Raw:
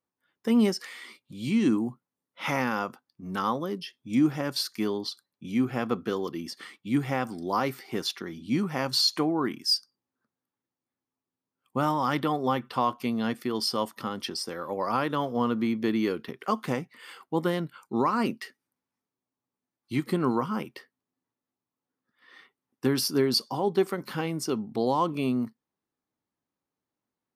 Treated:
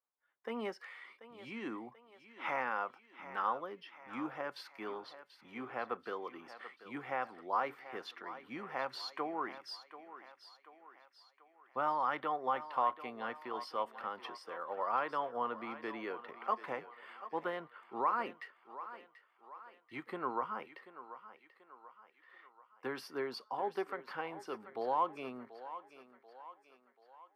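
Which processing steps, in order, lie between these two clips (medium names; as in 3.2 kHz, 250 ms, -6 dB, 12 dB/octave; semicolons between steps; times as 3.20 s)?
three-band isolator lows -22 dB, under 490 Hz, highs -23 dB, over 2.5 kHz; on a send: thinning echo 736 ms, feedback 53%, high-pass 350 Hz, level -13 dB; on the sum: trim -4.5 dB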